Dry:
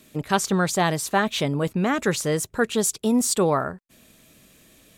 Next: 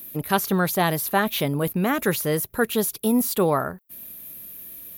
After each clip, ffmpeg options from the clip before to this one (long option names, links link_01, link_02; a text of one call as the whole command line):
ffmpeg -i in.wav -filter_complex "[0:a]aexciter=amount=15.6:drive=6.2:freq=11000,acrossover=split=4200[link_01][link_02];[link_02]acompressor=threshold=-25dB:ratio=4:attack=1:release=60[link_03];[link_01][link_03]amix=inputs=2:normalize=0" out.wav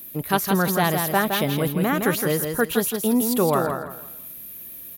ffmpeg -i in.wav -af "aecho=1:1:165|330|495|660:0.531|0.154|0.0446|0.0129" out.wav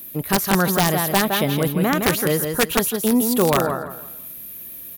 ffmpeg -i in.wav -af "aeval=exprs='(mod(3.55*val(0)+1,2)-1)/3.55':channel_layout=same,volume=2.5dB" out.wav